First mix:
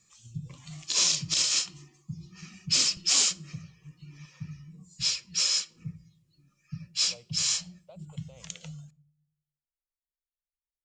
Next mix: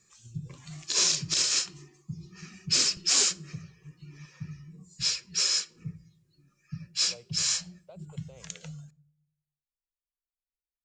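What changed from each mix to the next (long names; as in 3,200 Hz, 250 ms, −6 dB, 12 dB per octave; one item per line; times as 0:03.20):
master: add thirty-one-band graphic EQ 400 Hz +11 dB, 1,600 Hz +7 dB, 3,150 Hz −4 dB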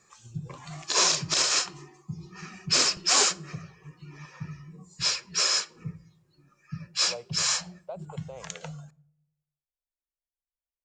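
master: add parametric band 850 Hz +15 dB 2 octaves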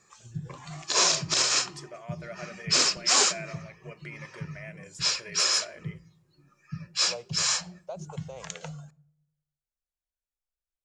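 first voice: unmuted
second voice: remove moving average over 7 samples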